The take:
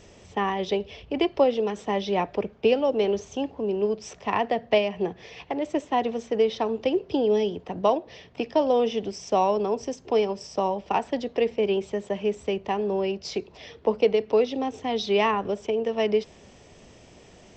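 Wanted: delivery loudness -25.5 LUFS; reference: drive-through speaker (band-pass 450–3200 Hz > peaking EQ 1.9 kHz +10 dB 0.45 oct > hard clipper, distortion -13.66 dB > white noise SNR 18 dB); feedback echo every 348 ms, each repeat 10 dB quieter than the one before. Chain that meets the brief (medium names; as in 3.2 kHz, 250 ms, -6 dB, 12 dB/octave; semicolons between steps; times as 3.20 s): band-pass 450–3200 Hz; peaking EQ 1.9 kHz +10 dB 0.45 oct; feedback delay 348 ms, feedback 32%, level -10 dB; hard clipper -19.5 dBFS; white noise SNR 18 dB; trim +3 dB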